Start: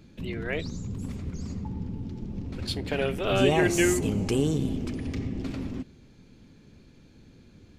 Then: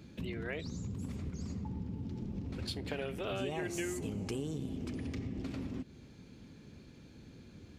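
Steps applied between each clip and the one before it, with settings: high-pass 48 Hz; compression 4:1, threshold -37 dBFS, peak gain reduction 17 dB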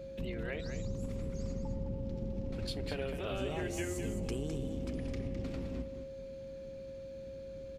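octave divider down 2 oct, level -1 dB; delay 209 ms -8 dB; whistle 540 Hz -42 dBFS; trim -1.5 dB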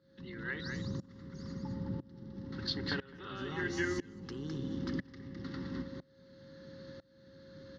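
static phaser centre 2.4 kHz, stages 6; tremolo saw up 1 Hz, depth 95%; cabinet simulation 180–6000 Hz, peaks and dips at 230 Hz -6 dB, 470 Hz -8 dB, 1.9 kHz +6 dB, 3.1 kHz -5 dB; trim +11 dB

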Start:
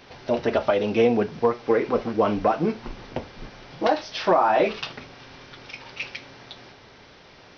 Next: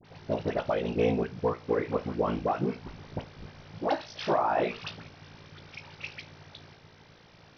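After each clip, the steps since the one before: peaking EQ 130 Hz +12.5 dB 0.49 oct; ring modulator 28 Hz; phase dispersion highs, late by 47 ms, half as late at 1.3 kHz; trim -4.5 dB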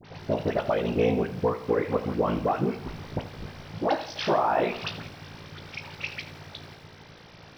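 in parallel at +1 dB: compression, threshold -34 dBFS, peak gain reduction 12.5 dB; on the sum: bit-crushed delay 84 ms, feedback 55%, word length 8-bit, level -14 dB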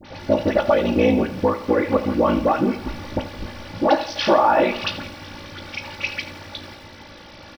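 comb 3.5 ms, depth 73%; trim +6 dB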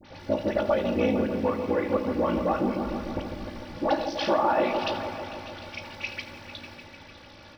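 delay with an opening low-pass 150 ms, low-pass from 750 Hz, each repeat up 1 oct, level -6 dB; trim -8 dB

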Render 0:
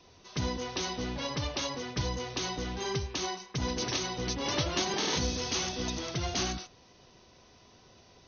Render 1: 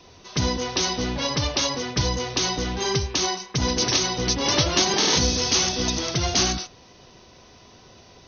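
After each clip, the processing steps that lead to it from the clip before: dynamic bell 5.3 kHz, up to +5 dB, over -47 dBFS, Q 1.6; trim +8.5 dB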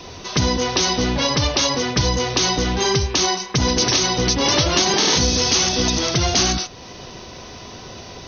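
in parallel at 0 dB: peak limiter -15 dBFS, peak gain reduction 8.5 dB; on the sum: compression 1.5:1, threshold -35 dBFS, peak gain reduction 8.5 dB; trim +7 dB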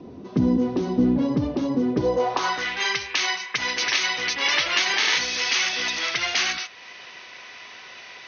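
band-pass sweep 250 Hz -> 2.1 kHz, 1.86–2.68 s; trim +6 dB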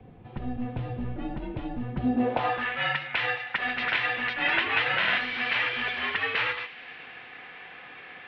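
mistuned SSB -250 Hz 380–3300 Hz; feedback echo behind a high-pass 106 ms, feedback 83%, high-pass 2.2 kHz, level -18 dB; trim -2 dB

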